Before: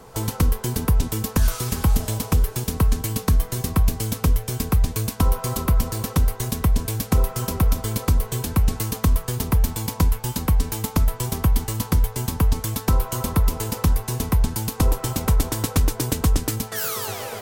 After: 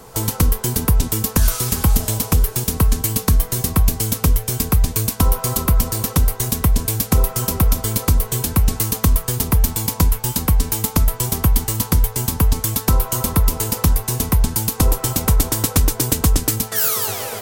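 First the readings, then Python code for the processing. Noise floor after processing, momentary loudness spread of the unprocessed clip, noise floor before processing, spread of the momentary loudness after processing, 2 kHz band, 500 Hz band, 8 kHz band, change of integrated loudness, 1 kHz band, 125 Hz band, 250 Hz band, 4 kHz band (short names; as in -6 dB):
-34 dBFS, 3 LU, -38 dBFS, 2 LU, +4.0 dB, +3.0 dB, +8.5 dB, +5.0 dB, +3.0 dB, +3.0 dB, +3.0 dB, +5.5 dB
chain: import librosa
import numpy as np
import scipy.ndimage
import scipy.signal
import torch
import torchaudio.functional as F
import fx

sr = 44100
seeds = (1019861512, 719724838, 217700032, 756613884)

y = fx.high_shelf(x, sr, hz=5500.0, db=7.5)
y = F.gain(torch.from_numpy(y), 3.0).numpy()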